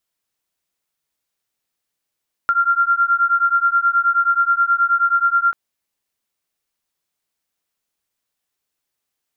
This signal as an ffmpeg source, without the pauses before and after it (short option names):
-f lavfi -i "aevalsrc='0.15*(sin(2*PI*1380*t)+sin(2*PI*1389.4*t))':d=3.04:s=44100"